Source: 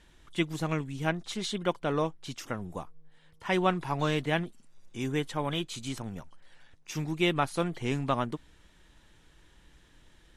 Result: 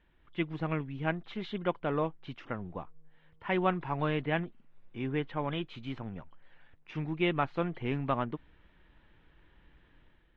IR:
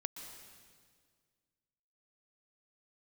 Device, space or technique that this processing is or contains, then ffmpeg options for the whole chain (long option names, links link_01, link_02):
action camera in a waterproof case: -filter_complex "[0:a]asettb=1/sr,asplit=3[link_01][link_02][link_03];[link_01]atrim=end=3.964[link_04];[link_02]atrim=start=3.96:end=5.47,asetpts=PTS-STARTPTS,afade=type=in:duration=0.004:curve=qsin,afade=type=out:start_time=1.506:duration=0.004:curve=qsin,lowpass=5200[link_05];[link_03]atrim=start=5.466[link_06];[link_04][link_05]acrossfade=duration=0.004:curve1=hsin:curve2=qsin[link_07];[link_07][link_06]acrossfade=duration=0.004:curve1=qsin:curve2=hsin,lowpass=frequency=2900:width=0.5412,lowpass=frequency=2900:width=1.3066,dynaudnorm=framelen=100:gausssize=7:maxgain=6.5dB,volume=-8.5dB" -ar 44100 -c:a aac -b:a 96k